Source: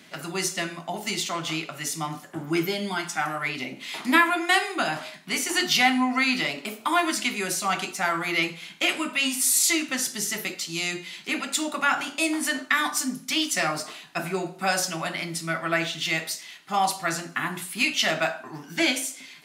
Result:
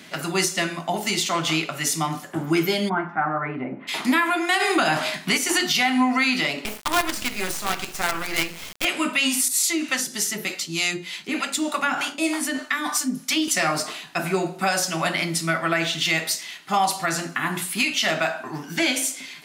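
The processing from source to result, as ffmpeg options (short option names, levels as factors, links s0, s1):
-filter_complex "[0:a]asplit=3[s0][s1][s2];[s0]afade=t=out:st=2.88:d=0.02[s3];[s1]lowpass=f=1500:w=0.5412,lowpass=f=1500:w=1.3066,afade=t=in:st=2.88:d=0.02,afade=t=out:st=3.87:d=0.02[s4];[s2]afade=t=in:st=3.87:d=0.02[s5];[s3][s4][s5]amix=inputs=3:normalize=0,asplit=3[s6][s7][s8];[s6]afade=t=out:st=4.59:d=0.02[s9];[s7]acontrast=88,afade=t=in:st=4.59:d=0.02,afade=t=out:st=5.36:d=0.02[s10];[s8]afade=t=in:st=5.36:d=0.02[s11];[s9][s10][s11]amix=inputs=3:normalize=0,asettb=1/sr,asplit=3[s12][s13][s14];[s12]atrim=end=6.654[s15];[s13]atrim=start=6.65:end=8.85,asetpts=PTS-STARTPTS,afade=t=in:d=0.004:c=qsin,afade=t=out:st=2.196:d=0.004:c=qsin,acrusher=bits=4:dc=4:mix=0:aa=0.000001[s16];[s14]atrim=start=8.846[s17];[s15][s16]acrossfade=d=0.004:c1=hsin:c2=qsin[s18];[s18][s17]acrossfade=d=0.004:c1=qsin:c2=hsin,asettb=1/sr,asplit=3[s19][s20][s21];[s19]atrim=end=9.484[s22];[s20]atrim=start=9.48:end=13.48,asetpts=PTS-STARTPTS,afade=t=in:d=0.004:c=qsin,afade=t=out:st=3.996:d=0.004:c=qsin,acrossover=split=490[s23][s24];[s23]aeval=exprs='val(0)*(1-0.7/2+0.7/2*cos(2*PI*3.3*n/s))':c=same[s25];[s24]aeval=exprs='val(0)*(1-0.7/2-0.7/2*cos(2*PI*3.3*n/s))':c=same[s26];[s25][s26]amix=inputs=2:normalize=0[s27];[s21]atrim=start=13.476[s28];[s22][s27]acrossfade=d=0.004:c1=hsin:c2=qsin[s29];[s29][s28]acrossfade=d=0.004:c1=qsin:c2=hsin,alimiter=limit=0.133:level=0:latency=1:release=185,volume=2.11"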